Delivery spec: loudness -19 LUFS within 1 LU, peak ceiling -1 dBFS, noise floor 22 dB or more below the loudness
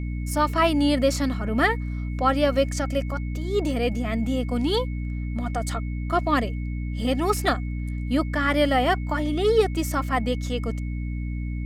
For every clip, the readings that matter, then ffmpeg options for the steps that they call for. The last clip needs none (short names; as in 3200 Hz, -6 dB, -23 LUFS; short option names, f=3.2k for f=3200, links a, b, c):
hum 60 Hz; harmonics up to 300 Hz; hum level -26 dBFS; steady tone 2200 Hz; tone level -46 dBFS; loudness -24.5 LUFS; peak -8.5 dBFS; loudness target -19.0 LUFS
-> -af "bandreject=f=60:t=h:w=4,bandreject=f=120:t=h:w=4,bandreject=f=180:t=h:w=4,bandreject=f=240:t=h:w=4,bandreject=f=300:t=h:w=4"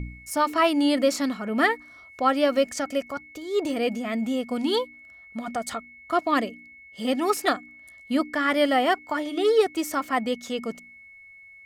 hum none; steady tone 2200 Hz; tone level -46 dBFS
-> -af "bandreject=f=2.2k:w=30"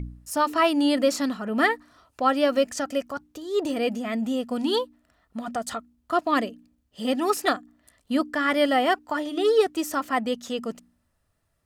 steady tone none; loudness -25.0 LUFS; peak -9.0 dBFS; loudness target -19.0 LUFS
-> -af "volume=6dB"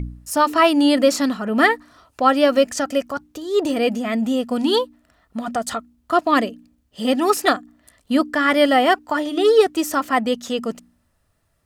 loudness -19.0 LUFS; peak -3.0 dBFS; noise floor -66 dBFS